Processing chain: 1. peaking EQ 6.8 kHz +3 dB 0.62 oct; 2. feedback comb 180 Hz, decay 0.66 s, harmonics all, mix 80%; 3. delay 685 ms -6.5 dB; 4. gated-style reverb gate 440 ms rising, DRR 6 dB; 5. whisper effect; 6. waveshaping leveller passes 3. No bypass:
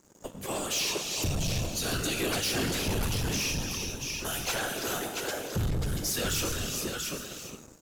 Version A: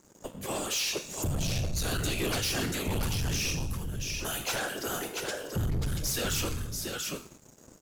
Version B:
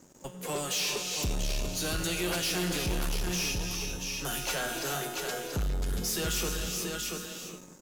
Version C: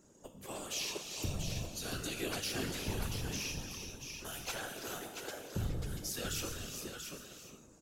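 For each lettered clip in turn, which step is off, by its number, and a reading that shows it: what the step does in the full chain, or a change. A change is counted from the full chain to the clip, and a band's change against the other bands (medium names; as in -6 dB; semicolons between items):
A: 4, 125 Hz band +2.0 dB; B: 5, 125 Hz band -2.5 dB; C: 6, crest factor change +9.0 dB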